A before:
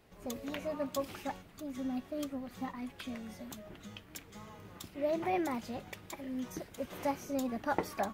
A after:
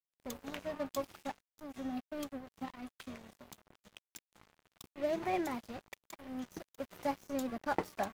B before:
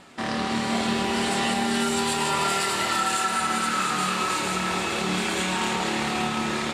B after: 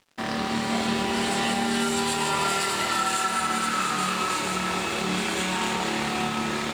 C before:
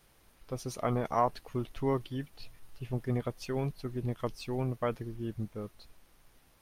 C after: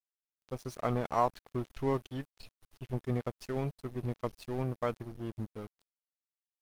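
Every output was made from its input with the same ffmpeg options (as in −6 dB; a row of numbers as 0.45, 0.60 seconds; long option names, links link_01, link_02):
-af "aeval=exprs='sgn(val(0))*max(abs(val(0))-0.00596,0)':channel_layout=same"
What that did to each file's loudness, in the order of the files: −2.0, −0.5, −1.5 LU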